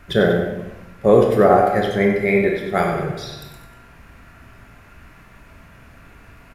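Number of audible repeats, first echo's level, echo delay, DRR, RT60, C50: 2, −8.0 dB, 96 ms, 0.0 dB, 1.0 s, 2.5 dB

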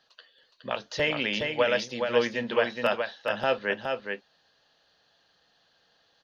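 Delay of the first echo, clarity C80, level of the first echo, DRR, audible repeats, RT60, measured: 417 ms, no reverb audible, −5.0 dB, no reverb audible, 1, no reverb audible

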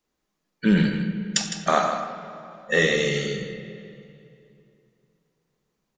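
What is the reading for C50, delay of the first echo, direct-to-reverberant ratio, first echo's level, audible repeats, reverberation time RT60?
6.0 dB, 158 ms, 6.0 dB, −10.0 dB, 1, 2.7 s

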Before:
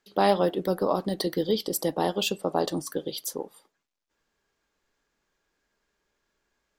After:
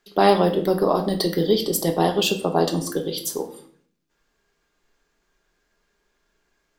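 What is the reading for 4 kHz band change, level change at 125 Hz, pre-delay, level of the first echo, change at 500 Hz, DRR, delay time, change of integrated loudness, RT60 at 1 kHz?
+6.0 dB, +8.0 dB, 3 ms, no echo audible, +6.0 dB, 4.0 dB, no echo audible, +6.0 dB, 0.50 s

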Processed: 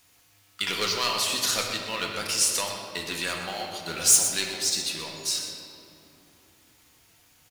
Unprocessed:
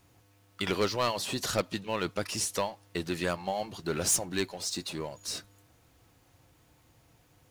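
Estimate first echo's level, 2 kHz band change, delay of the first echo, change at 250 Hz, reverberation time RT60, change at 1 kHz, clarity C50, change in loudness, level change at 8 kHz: −9.0 dB, +6.0 dB, 123 ms, −4.5 dB, 2.9 s, +1.5 dB, 2.5 dB, +7.0 dB, +10.0 dB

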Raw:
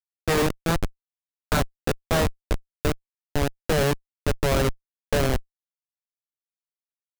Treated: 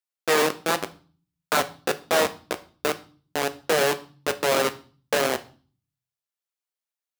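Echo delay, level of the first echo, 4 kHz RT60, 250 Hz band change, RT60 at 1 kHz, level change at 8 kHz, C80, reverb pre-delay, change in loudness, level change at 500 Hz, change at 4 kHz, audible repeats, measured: no echo audible, no echo audible, 0.40 s, −5.0 dB, 0.40 s, +3.5 dB, 22.0 dB, 4 ms, +1.0 dB, +1.5 dB, +3.5 dB, no echo audible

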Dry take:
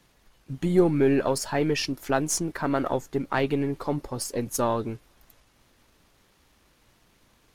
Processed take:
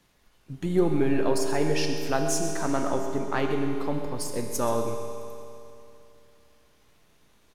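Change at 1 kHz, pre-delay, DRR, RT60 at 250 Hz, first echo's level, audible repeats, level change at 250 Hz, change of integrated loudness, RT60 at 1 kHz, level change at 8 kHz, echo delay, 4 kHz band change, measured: −1.0 dB, 5 ms, 3.0 dB, 2.9 s, −12.5 dB, 1, −1.5 dB, −1.5 dB, 2.9 s, −1.5 dB, 130 ms, −1.5 dB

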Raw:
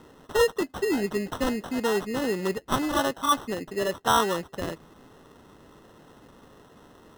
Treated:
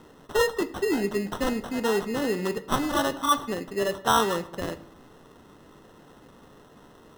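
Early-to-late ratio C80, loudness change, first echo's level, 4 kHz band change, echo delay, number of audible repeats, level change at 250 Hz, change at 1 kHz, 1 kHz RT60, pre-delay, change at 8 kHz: 18.5 dB, 0.0 dB, no echo audible, 0.0 dB, no echo audible, no echo audible, +0.5 dB, 0.0 dB, 0.70 s, 3 ms, 0.0 dB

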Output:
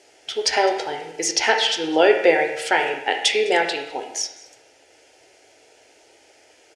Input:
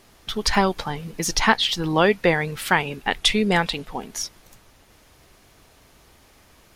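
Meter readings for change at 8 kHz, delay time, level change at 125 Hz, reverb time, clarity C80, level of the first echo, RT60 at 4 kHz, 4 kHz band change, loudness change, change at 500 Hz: +3.0 dB, 207 ms, below −15 dB, 0.80 s, 8.0 dB, −20.5 dB, 0.75 s, +1.0 dB, +1.5 dB, +5.0 dB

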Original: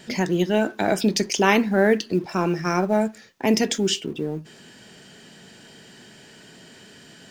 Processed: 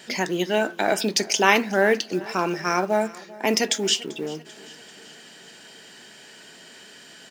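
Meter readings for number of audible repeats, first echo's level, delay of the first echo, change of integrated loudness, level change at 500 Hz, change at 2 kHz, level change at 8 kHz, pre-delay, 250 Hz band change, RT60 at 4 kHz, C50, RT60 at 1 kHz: 3, −21.0 dB, 390 ms, −0.5 dB, −1.0 dB, +2.5 dB, +3.0 dB, no reverb audible, −5.5 dB, no reverb audible, no reverb audible, no reverb audible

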